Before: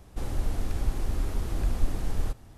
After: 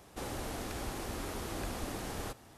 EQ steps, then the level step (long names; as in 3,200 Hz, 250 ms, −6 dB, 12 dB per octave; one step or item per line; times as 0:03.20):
high-pass filter 390 Hz 6 dB per octave
+2.5 dB